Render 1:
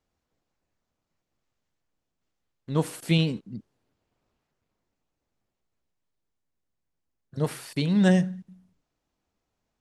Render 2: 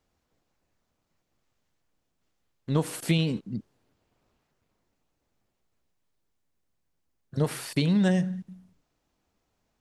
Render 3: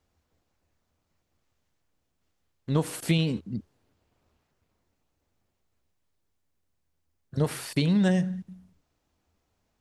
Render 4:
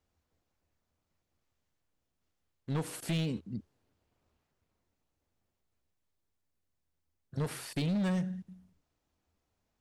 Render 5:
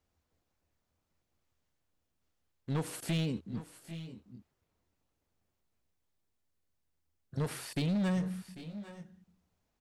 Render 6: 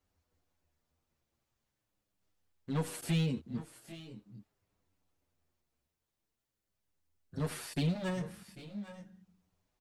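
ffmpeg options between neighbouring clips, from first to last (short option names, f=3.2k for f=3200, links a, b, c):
-af "acompressor=threshold=-25dB:ratio=6,volume=4.5dB"
-af "equalizer=f=81:w=5:g=11"
-af "asoftclip=type=hard:threshold=-22dB,volume=-6dB"
-af "aecho=1:1:794|818:0.15|0.158"
-filter_complex "[0:a]asplit=2[a][b];[b]adelay=7.6,afreqshift=-0.42[c];[a][c]amix=inputs=2:normalize=1,volume=2.5dB"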